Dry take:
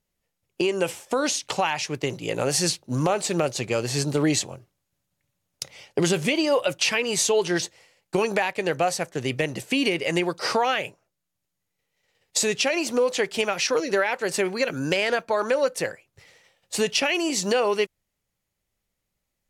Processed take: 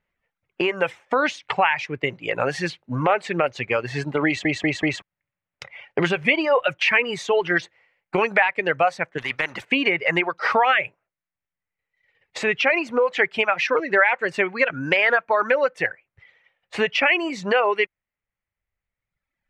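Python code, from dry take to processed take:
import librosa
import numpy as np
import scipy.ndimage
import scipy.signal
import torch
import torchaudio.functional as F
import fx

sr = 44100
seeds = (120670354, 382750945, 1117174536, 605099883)

y = fx.spectral_comp(x, sr, ratio=2.0, at=(9.18, 9.65))
y = fx.edit(y, sr, fx.stutter_over(start_s=4.26, slice_s=0.19, count=4), tone=tone)
y = fx.dereverb_blind(y, sr, rt60_s=1.5)
y = fx.curve_eq(y, sr, hz=(350.0, 2100.0, 4800.0, 12000.0), db=(0, 11, -11, -26))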